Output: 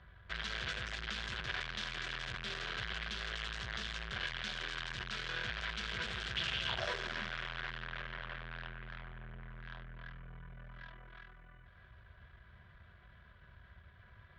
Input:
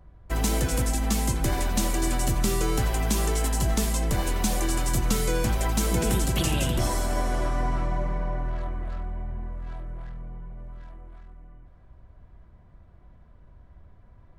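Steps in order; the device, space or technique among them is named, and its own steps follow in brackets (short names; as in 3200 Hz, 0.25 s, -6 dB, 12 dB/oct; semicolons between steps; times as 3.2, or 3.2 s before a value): scooped metal amplifier (tube stage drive 39 dB, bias 0.4; speaker cabinet 100–4000 Hz, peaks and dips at 220 Hz +5 dB, 370 Hz +9 dB, 840 Hz -8 dB, 1600 Hz +9 dB, 3300 Hz +5 dB; passive tone stack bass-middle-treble 10-0-10); 6.68–7.28 bell 1000 Hz -> 180 Hz +14 dB 0.71 oct; gain +11.5 dB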